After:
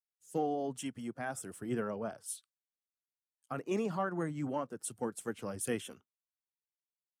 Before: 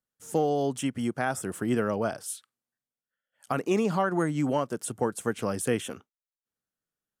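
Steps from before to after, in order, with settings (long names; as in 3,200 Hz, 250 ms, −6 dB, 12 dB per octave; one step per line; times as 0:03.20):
spectral magnitudes quantised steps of 15 dB
multiband upward and downward expander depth 70%
level −9 dB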